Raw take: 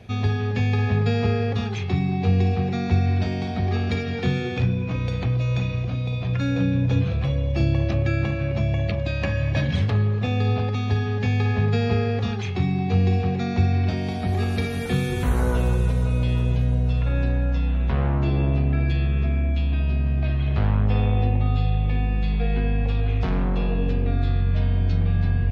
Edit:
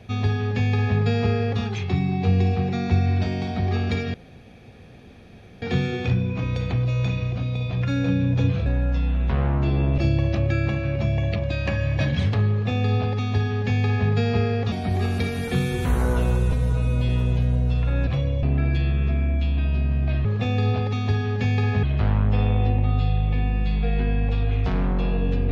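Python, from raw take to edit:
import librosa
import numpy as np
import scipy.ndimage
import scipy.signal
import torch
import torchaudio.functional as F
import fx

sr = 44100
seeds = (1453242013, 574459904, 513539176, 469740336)

y = fx.edit(x, sr, fx.insert_room_tone(at_s=4.14, length_s=1.48),
    fx.swap(start_s=7.18, length_s=0.36, other_s=17.26, other_length_s=1.32),
    fx.duplicate(start_s=10.07, length_s=1.58, to_s=20.4),
    fx.cut(start_s=12.28, length_s=1.82),
    fx.stretch_span(start_s=15.9, length_s=0.38, factor=1.5), tone=tone)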